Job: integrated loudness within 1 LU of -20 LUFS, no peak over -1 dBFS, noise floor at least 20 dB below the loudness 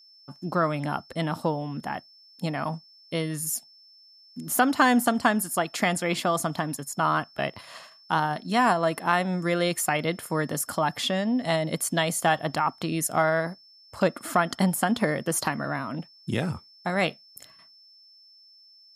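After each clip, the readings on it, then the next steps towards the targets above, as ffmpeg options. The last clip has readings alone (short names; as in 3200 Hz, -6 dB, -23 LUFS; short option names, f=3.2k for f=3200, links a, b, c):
steady tone 5300 Hz; tone level -52 dBFS; loudness -26.5 LUFS; peak -8.0 dBFS; loudness target -20.0 LUFS
-> -af "bandreject=f=5.3k:w=30"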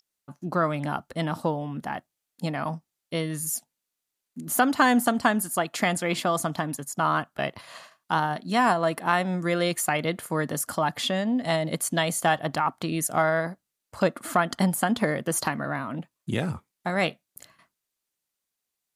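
steady tone none; loudness -26.5 LUFS; peak -8.0 dBFS; loudness target -20.0 LUFS
-> -af "volume=6.5dB"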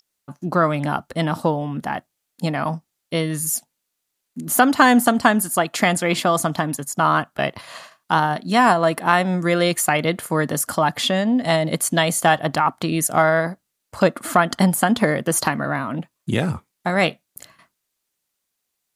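loudness -20.0 LUFS; peak -1.5 dBFS; noise floor -78 dBFS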